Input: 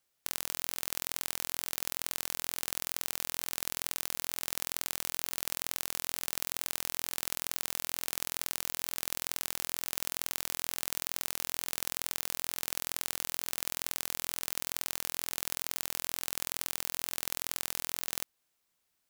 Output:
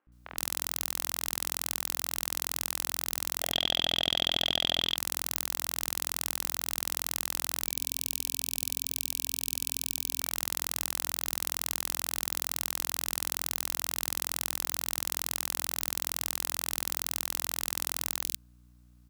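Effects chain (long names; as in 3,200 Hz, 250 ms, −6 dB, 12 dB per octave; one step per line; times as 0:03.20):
high-pass filter 160 Hz 12 dB per octave
mains hum 60 Hz, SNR 27 dB
0:03.40–0:04.84: low-pass with resonance 3,300 Hz, resonance Q 14
0:07.66–0:10.20: time-frequency box erased 260–2,300 Hz
in parallel at −7 dB: decimation without filtering 33×
on the sum: three-band delay without the direct sound mids, lows, highs 70/120 ms, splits 480/2,300 Hz
level +3 dB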